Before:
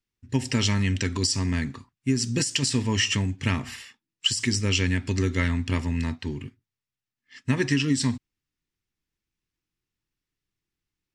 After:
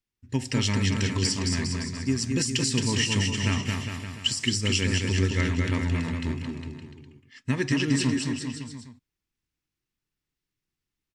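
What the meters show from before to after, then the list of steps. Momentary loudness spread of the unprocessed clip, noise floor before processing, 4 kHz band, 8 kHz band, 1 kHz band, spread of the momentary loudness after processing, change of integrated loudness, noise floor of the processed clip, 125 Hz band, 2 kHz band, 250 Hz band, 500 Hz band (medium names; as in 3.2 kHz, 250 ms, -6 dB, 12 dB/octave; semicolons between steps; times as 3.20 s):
11 LU, under -85 dBFS, -0.5 dB, -0.5 dB, -0.5 dB, 11 LU, -1.0 dB, under -85 dBFS, 0.0 dB, -0.5 dB, 0.0 dB, 0.0 dB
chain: bouncing-ball echo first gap 220 ms, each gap 0.85×, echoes 5; trim -2.5 dB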